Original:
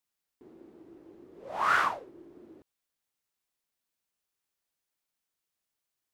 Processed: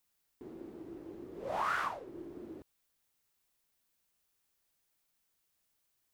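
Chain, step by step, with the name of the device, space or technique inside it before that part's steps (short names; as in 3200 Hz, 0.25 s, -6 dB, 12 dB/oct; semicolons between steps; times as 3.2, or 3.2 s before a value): ASMR close-microphone chain (low shelf 120 Hz +6.5 dB; compressor 4:1, threshold -38 dBFS, peak gain reduction 14.5 dB; high shelf 11000 Hz +5 dB); gain +4.5 dB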